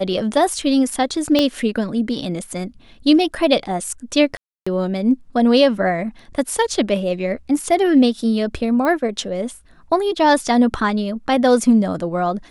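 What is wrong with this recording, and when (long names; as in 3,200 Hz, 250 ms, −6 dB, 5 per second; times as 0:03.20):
0:01.39: click −4 dBFS
0:04.37–0:04.67: drop-out 295 ms
0:08.85: click −11 dBFS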